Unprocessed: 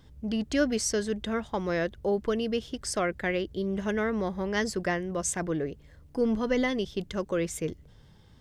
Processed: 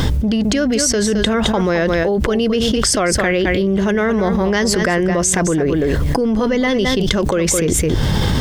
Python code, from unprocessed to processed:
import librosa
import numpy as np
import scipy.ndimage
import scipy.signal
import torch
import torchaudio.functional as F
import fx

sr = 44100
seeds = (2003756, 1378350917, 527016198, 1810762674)

p1 = fx.rider(x, sr, range_db=10, speed_s=0.5)
p2 = p1 + fx.echo_single(p1, sr, ms=215, db=-11.5, dry=0)
p3 = fx.env_flatten(p2, sr, amount_pct=100)
y = p3 * 10.0 ** (7.0 / 20.0)